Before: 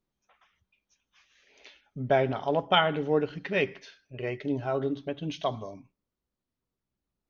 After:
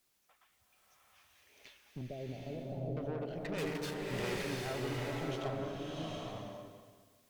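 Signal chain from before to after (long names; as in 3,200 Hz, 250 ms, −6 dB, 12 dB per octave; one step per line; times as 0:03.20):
background noise white −71 dBFS
0:03.58–0:04.44: leveller curve on the samples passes 5
brickwall limiter −19 dBFS, peak gain reduction 9.5 dB
downward compressor 2 to 1, threshold −37 dBFS, peak gain reduction 8.5 dB
tube saturation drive 36 dB, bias 0.75
0:02.01–0:02.97: Butterworth low-pass 630 Hz 36 dB per octave
slow-attack reverb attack 810 ms, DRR −3.5 dB
level −1 dB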